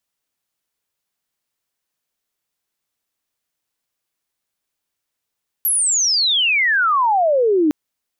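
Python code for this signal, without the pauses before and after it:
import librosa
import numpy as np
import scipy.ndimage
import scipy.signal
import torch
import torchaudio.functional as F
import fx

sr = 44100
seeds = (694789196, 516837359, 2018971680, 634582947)

y = fx.chirp(sr, length_s=2.06, from_hz=12000.0, to_hz=290.0, law='logarithmic', from_db=-14.5, to_db=-12.0)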